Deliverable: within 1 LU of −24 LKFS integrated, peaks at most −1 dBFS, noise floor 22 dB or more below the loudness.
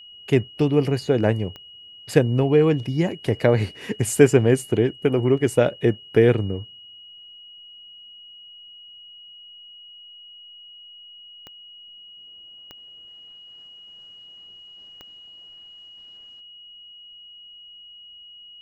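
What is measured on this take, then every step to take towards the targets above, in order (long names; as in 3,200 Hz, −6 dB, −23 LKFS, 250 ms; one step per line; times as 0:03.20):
number of clicks 4; interfering tone 2,900 Hz; level of the tone −42 dBFS; integrated loudness −20.5 LKFS; sample peak −1.5 dBFS; target loudness −24.0 LKFS
→ click removal
notch filter 2,900 Hz, Q 30
level −3.5 dB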